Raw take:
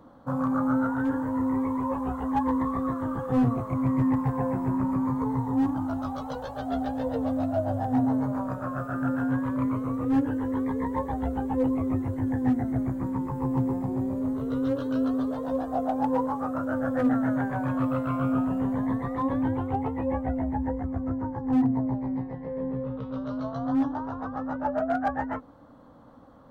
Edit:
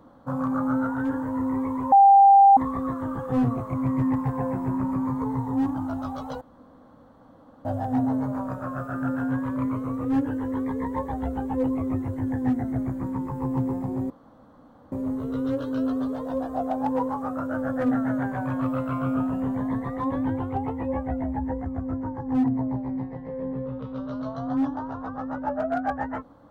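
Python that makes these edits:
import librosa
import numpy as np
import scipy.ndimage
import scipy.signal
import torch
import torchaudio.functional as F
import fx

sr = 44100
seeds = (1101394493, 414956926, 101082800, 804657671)

y = fx.edit(x, sr, fx.bleep(start_s=1.92, length_s=0.65, hz=792.0, db=-10.0),
    fx.room_tone_fill(start_s=6.41, length_s=1.24),
    fx.insert_room_tone(at_s=14.1, length_s=0.82), tone=tone)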